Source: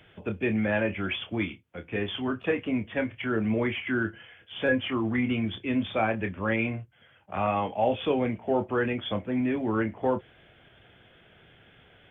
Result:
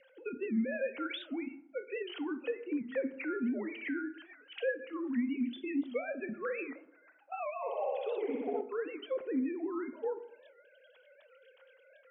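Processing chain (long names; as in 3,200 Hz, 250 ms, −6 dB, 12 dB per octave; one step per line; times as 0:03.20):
three sine waves on the formant tracks
rotating-speaker cabinet horn 0.8 Hz, later 8 Hz, at 0:02.14
downward compressor 6 to 1, threshold −39 dBFS, peak gain reduction 23 dB
hollow resonant body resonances 240/520/1,400 Hz, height 8 dB
0:07.53–0:08.61: flutter between parallel walls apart 10.4 metres, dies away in 1.4 s
on a send at −11 dB: convolution reverb RT60 0.85 s, pre-delay 8 ms
on the sum: wow of a warped record 78 rpm, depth 160 cents
level +1.5 dB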